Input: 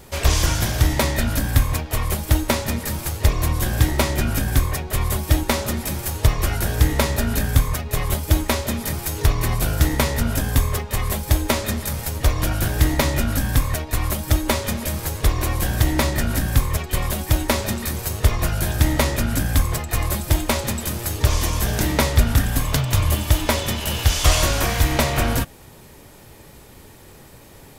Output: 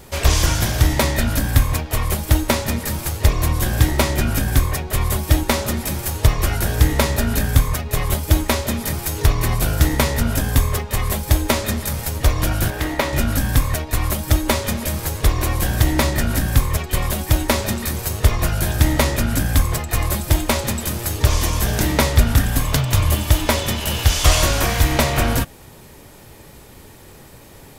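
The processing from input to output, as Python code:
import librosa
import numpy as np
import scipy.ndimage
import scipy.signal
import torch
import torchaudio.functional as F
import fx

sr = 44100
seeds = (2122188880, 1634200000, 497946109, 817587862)

y = fx.bass_treble(x, sr, bass_db=-11, treble_db=-8, at=(12.7, 13.13))
y = y * 10.0 ** (2.0 / 20.0)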